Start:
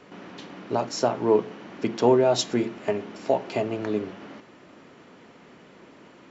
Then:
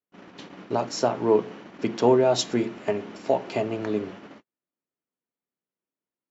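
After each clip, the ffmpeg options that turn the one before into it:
-af "agate=range=-46dB:threshold=-41dB:ratio=16:detection=peak"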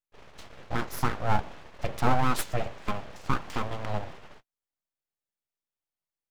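-af "aeval=exprs='abs(val(0))':c=same,volume=-2dB"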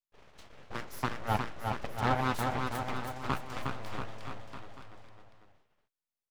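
-filter_complex "[0:a]aeval=exprs='0.398*(cos(1*acos(clip(val(0)/0.398,-1,1)))-cos(1*PI/2))+0.126*(cos(7*acos(clip(val(0)/0.398,-1,1)))-cos(7*PI/2))':c=same,asplit=2[a][b];[b]aecho=0:1:360|684|975.6|1238|1474:0.631|0.398|0.251|0.158|0.1[c];[a][c]amix=inputs=2:normalize=0,volume=-8.5dB"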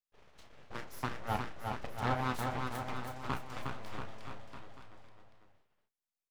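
-filter_complex "[0:a]asplit=2[a][b];[b]adelay=32,volume=-10.5dB[c];[a][c]amix=inputs=2:normalize=0,volume=-4.5dB"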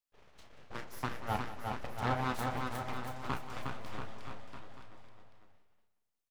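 -af "aecho=1:1:182|364|546|728:0.188|0.081|0.0348|0.015"

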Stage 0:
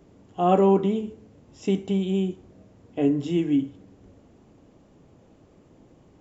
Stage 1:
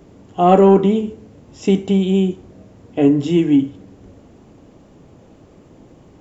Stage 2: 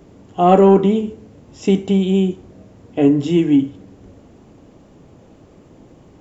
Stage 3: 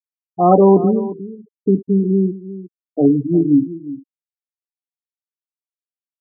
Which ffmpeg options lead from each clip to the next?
-af "acontrast=46,volume=3dB"
-af anull
-filter_complex "[0:a]afftfilt=real='re*gte(hypot(re,im),0.282)':imag='im*gte(hypot(re,im),0.282)':win_size=1024:overlap=0.75,asplit=2[a][b];[b]adelay=355.7,volume=-15dB,highshelf=f=4k:g=-8[c];[a][c]amix=inputs=2:normalize=0"

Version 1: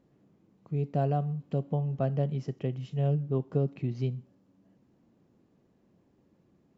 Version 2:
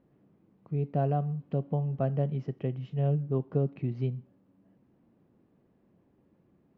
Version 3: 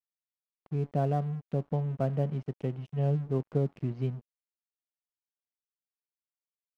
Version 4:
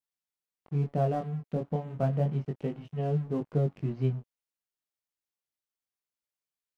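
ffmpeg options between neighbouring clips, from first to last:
-af "lowpass=2.7k"
-af "aeval=exprs='sgn(val(0))*max(abs(val(0))-0.00376,0)':c=same"
-af "flanger=delay=18.5:depth=6.7:speed=0.32,volume=4dB"

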